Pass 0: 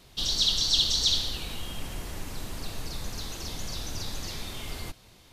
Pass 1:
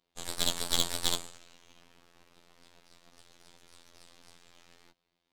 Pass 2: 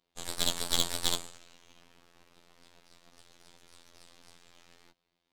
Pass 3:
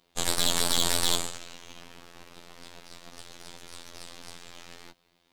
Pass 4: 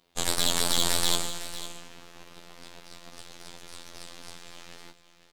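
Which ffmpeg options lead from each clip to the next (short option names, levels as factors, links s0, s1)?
-filter_complex "[0:a]acrossover=split=160 5100:gain=0.141 1 0.251[s0][s1][s2];[s0][s1][s2]amix=inputs=3:normalize=0,aeval=exprs='0.237*(cos(1*acos(clip(val(0)/0.237,-1,1)))-cos(1*PI/2))+0.0944*(cos(2*acos(clip(val(0)/0.237,-1,1)))-cos(2*PI/2))+0.119*(cos(4*acos(clip(val(0)/0.237,-1,1)))-cos(4*PI/2))+0.0376*(cos(7*acos(clip(val(0)/0.237,-1,1)))-cos(7*PI/2))':c=same,afftfilt=real='hypot(re,im)*cos(PI*b)':imag='0':win_size=2048:overlap=0.75,volume=0.891"
-af anull
-af "alimiter=level_in=4.73:limit=0.891:release=50:level=0:latency=1,volume=0.891"
-af "aecho=1:1:505:0.224"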